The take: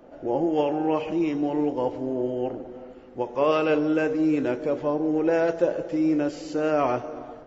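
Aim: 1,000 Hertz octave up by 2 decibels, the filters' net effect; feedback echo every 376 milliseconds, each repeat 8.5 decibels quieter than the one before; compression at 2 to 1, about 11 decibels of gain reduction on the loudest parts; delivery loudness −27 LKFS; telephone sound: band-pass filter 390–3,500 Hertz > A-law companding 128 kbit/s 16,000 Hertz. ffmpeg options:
ffmpeg -i in.wav -af "equalizer=frequency=1000:width_type=o:gain=3,acompressor=threshold=-37dB:ratio=2,highpass=390,lowpass=3500,aecho=1:1:376|752|1128|1504:0.376|0.143|0.0543|0.0206,volume=8.5dB" -ar 16000 -c:a pcm_alaw out.wav

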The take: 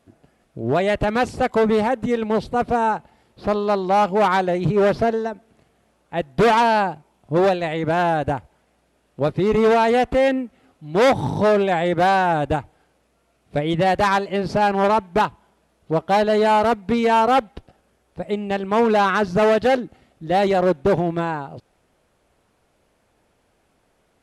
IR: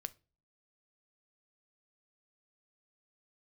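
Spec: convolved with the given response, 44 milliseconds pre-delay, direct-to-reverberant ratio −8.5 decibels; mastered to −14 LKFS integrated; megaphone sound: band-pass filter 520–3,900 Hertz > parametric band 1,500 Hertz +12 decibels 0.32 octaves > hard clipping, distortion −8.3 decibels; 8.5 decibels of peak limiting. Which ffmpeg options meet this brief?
-filter_complex "[0:a]alimiter=limit=-17.5dB:level=0:latency=1,asplit=2[link_01][link_02];[1:a]atrim=start_sample=2205,adelay=44[link_03];[link_02][link_03]afir=irnorm=-1:irlink=0,volume=11.5dB[link_04];[link_01][link_04]amix=inputs=2:normalize=0,highpass=520,lowpass=3900,equalizer=frequency=1500:width_type=o:width=0.32:gain=12,asoftclip=type=hard:threshold=-15.5dB,volume=6.5dB"

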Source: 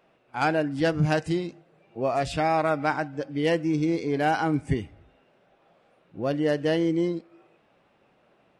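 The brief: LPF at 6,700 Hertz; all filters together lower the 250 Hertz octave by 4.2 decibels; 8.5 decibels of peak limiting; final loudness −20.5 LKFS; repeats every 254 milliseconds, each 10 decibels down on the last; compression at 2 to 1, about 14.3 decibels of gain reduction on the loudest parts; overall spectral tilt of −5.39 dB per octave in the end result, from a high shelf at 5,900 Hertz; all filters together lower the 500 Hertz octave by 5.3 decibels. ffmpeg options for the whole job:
ffmpeg -i in.wav -af "lowpass=6700,equalizer=frequency=250:width_type=o:gain=-3.5,equalizer=frequency=500:width_type=o:gain=-6,highshelf=frequency=5900:gain=-6.5,acompressor=threshold=-48dB:ratio=2,alimiter=level_in=10dB:limit=-24dB:level=0:latency=1,volume=-10dB,aecho=1:1:254|508|762|1016:0.316|0.101|0.0324|0.0104,volume=23.5dB" out.wav

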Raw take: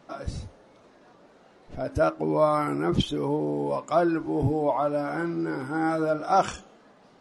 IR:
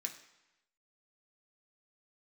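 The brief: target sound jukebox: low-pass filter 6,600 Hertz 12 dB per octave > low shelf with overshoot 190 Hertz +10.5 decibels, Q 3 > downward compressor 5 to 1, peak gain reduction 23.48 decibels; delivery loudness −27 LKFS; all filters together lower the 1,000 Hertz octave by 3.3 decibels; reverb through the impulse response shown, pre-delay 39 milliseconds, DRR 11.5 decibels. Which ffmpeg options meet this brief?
-filter_complex "[0:a]equalizer=frequency=1000:width_type=o:gain=-4,asplit=2[link_01][link_02];[1:a]atrim=start_sample=2205,adelay=39[link_03];[link_02][link_03]afir=irnorm=-1:irlink=0,volume=-10dB[link_04];[link_01][link_04]amix=inputs=2:normalize=0,lowpass=6600,lowshelf=frequency=190:width_type=q:width=3:gain=10.5,acompressor=threshold=-31dB:ratio=5,volume=7dB"

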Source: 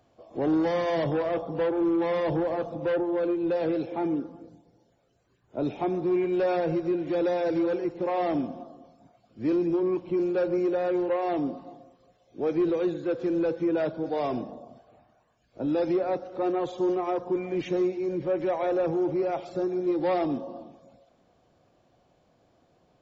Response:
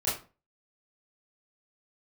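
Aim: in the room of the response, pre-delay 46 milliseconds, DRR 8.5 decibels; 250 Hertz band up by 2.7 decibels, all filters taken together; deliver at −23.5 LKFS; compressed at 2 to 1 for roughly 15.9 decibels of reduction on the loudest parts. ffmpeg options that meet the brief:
-filter_complex "[0:a]equalizer=frequency=250:width_type=o:gain=4.5,acompressor=threshold=-50dB:ratio=2,asplit=2[link_01][link_02];[1:a]atrim=start_sample=2205,adelay=46[link_03];[link_02][link_03]afir=irnorm=-1:irlink=0,volume=-17dB[link_04];[link_01][link_04]amix=inputs=2:normalize=0,volume=16.5dB"

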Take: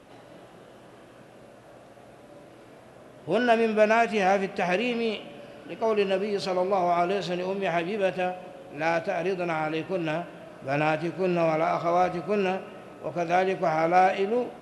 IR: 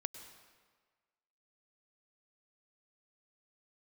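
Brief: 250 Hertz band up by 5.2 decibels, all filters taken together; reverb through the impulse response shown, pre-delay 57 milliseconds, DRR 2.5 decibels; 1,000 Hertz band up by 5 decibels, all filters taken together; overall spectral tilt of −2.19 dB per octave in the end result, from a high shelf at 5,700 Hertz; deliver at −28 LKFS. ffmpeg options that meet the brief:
-filter_complex "[0:a]equalizer=frequency=250:width_type=o:gain=7,equalizer=frequency=1000:width_type=o:gain=7.5,highshelf=frequency=5700:gain=-7.5,asplit=2[link_01][link_02];[1:a]atrim=start_sample=2205,adelay=57[link_03];[link_02][link_03]afir=irnorm=-1:irlink=0,volume=-1dB[link_04];[link_01][link_04]amix=inputs=2:normalize=0,volume=-8dB"

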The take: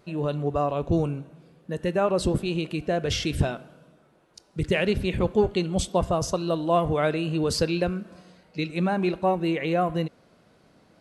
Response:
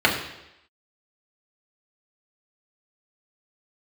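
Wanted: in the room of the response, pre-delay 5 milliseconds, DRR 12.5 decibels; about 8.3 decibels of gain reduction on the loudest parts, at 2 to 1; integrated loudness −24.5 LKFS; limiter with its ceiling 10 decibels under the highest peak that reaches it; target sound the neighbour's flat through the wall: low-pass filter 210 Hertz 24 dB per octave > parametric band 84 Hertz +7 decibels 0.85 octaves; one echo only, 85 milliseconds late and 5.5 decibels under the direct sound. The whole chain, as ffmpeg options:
-filter_complex "[0:a]acompressor=threshold=-31dB:ratio=2,alimiter=level_in=3dB:limit=-24dB:level=0:latency=1,volume=-3dB,aecho=1:1:85:0.531,asplit=2[link_01][link_02];[1:a]atrim=start_sample=2205,adelay=5[link_03];[link_02][link_03]afir=irnorm=-1:irlink=0,volume=-32.5dB[link_04];[link_01][link_04]amix=inputs=2:normalize=0,lowpass=frequency=210:width=0.5412,lowpass=frequency=210:width=1.3066,equalizer=frequency=84:width_type=o:width=0.85:gain=7,volume=14.5dB"

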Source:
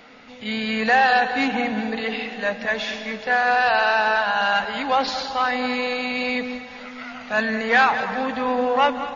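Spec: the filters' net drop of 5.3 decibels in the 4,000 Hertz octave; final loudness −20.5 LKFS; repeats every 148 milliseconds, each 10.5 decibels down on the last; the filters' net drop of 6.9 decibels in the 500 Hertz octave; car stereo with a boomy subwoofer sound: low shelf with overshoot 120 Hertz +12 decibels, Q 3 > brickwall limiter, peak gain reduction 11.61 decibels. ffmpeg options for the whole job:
ffmpeg -i in.wav -af "lowshelf=frequency=120:width_type=q:width=3:gain=12,equalizer=frequency=500:width_type=o:gain=-7.5,equalizer=frequency=4000:width_type=o:gain=-7,aecho=1:1:148|296|444:0.299|0.0896|0.0269,volume=8.5dB,alimiter=limit=-11.5dB:level=0:latency=1" out.wav

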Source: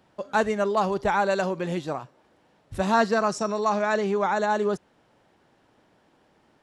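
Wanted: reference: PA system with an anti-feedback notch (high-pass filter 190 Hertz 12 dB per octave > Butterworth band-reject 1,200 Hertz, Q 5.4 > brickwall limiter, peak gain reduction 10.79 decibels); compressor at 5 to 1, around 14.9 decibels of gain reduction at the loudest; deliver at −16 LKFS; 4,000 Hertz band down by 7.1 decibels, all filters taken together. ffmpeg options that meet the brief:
ffmpeg -i in.wav -af "equalizer=frequency=4000:width_type=o:gain=-9,acompressor=threshold=-35dB:ratio=5,highpass=190,asuperstop=centerf=1200:order=8:qfactor=5.4,volume=27.5dB,alimiter=limit=-7.5dB:level=0:latency=1" out.wav

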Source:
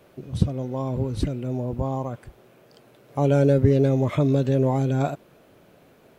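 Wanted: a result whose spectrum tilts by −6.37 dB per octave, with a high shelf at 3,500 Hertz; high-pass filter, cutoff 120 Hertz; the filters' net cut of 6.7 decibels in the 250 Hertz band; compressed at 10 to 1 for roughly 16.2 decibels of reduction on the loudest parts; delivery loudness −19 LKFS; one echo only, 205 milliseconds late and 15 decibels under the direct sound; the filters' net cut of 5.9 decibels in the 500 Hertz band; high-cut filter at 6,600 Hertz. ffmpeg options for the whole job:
ffmpeg -i in.wav -af "highpass=120,lowpass=6600,equalizer=frequency=250:width_type=o:gain=-6.5,equalizer=frequency=500:width_type=o:gain=-5.5,highshelf=frequency=3500:gain=7.5,acompressor=threshold=-34dB:ratio=10,aecho=1:1:205:0.178,volume=20.5dB" out.wav

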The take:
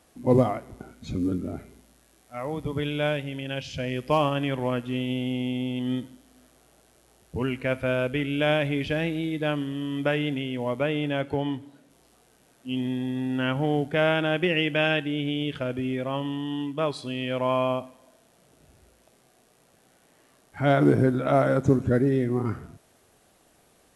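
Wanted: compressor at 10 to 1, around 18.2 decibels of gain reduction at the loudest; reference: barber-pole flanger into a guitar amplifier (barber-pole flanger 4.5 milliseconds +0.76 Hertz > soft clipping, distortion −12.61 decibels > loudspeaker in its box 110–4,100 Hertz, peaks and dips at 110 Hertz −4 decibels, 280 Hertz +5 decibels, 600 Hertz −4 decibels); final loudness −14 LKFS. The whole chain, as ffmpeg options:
ffmpeg -i in.wav -filter_complex "[0:a]acompressor=threshold=-33dB:ratio=10,asplit=2[link_01][link_02];[link_02]adelay=4.5,afreqshift=0.76[link_03];[link_01][link_03]amix=inputs=2:normalize=1,asoftclip=threshold=-36.5dB,highpass=110,equalizer=frequency=110:width_type=q:width=4:gain=-4,equalizer=frequency=280:width_type=q:width=4:gain=5,equalizer=frequency=600:width_type=q:width=4:gain=-4,lowpass=frequency=4100:width=0.5412,lowpass=frequency=4100:width=1.3066,volume=28.5dB" out.wav

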